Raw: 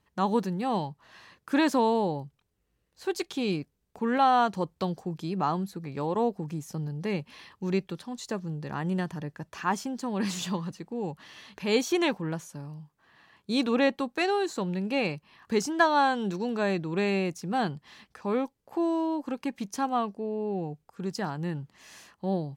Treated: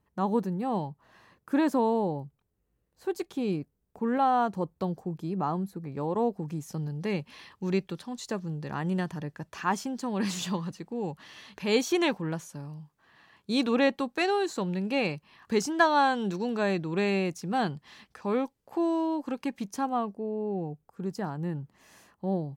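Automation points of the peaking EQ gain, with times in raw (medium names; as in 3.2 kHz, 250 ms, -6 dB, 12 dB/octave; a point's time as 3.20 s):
peaking EQ 4 kHz 2.8 oct
5.90 s -10.5 dB
6.75 s 0 dB
19.47 s 0 dB
20.10 s -9.5 dB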